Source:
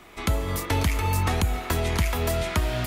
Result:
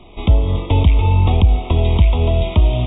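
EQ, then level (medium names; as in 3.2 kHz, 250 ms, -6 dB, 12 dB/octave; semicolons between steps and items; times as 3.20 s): Butterworth band-stop 1.6 kHz, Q 0.99; brick-wall FIR low-pass 3.8 kHz; bass shelf 99 Hz +10.5 dB; +6.0 dB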